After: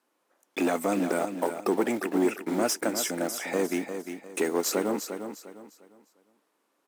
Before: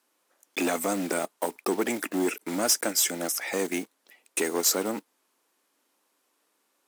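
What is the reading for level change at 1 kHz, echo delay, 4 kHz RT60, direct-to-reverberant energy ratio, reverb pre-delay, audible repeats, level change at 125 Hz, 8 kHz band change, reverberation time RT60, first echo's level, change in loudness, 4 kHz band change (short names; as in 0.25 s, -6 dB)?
+1.0 dB, 0.352 s, none, none, none, 3, +2.5 dB, -6.5 dB, none, -8.5 dB, -1.5 dB, -5.5 dB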